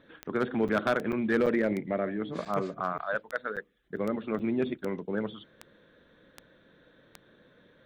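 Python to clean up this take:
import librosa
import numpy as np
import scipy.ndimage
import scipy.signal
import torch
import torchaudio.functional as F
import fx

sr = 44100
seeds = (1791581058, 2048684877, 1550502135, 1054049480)

y = fx.fix_declip(x, sr, threshold_db=-18.0)
y = fx.fix_declick_ar(y, sr, threshold=10.0)
y = fx.fix_interpolate(y, sr, at_s=(0.68, 1.12, 1.46, 2.45, 2.98, 3.56, 3.96, 4.39), length_ms=7.2)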